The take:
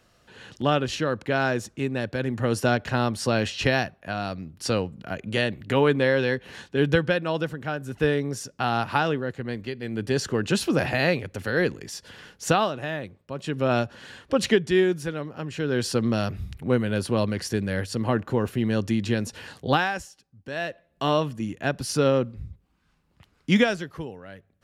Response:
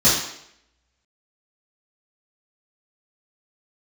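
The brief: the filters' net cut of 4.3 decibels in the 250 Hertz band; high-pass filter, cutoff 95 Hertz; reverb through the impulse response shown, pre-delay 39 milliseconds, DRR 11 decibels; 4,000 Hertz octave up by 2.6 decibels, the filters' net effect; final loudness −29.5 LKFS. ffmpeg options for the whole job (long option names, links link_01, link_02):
-filter_complex "[0:a]highpass=95,equalizer=frequency=250:width_type=o:gain=-5.5,equalizer=frequency=4000:width_type=o:gain=3.5,asplit=2[link_01][link_02];[1:a]atrim=start_sample=2205,adelay=39[link_03];[link_02][link_03]afir=irnorm=-1:irlink=0,volume=-30.5dB[link_04];[link_01][link_04]amix=inputs=2:normalize=0,volume=-3dB"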